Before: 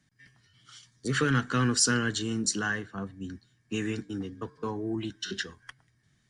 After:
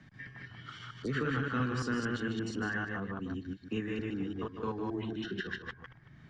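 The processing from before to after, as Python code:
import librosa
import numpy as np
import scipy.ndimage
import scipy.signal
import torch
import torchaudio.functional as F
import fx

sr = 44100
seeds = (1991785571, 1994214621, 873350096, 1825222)

y = fx.reverse_delay(x, sr, ms=114, wet_db=-1)
y = scipy.signal.sosfilt(scipy.signal.butter(2, 2500.0, 'lowpass', fs=sr, output='sos'), y)
y = y + 10.0 ** (-8.5 / 20.0) * np.pad(y, (int(151 * sr / 1000.0), 0))[:len(y)]
y = fx.band_squash(y, sr, depth_pct=70)
y = F.gain(torch.from_numpy(y), -6.5).numpy()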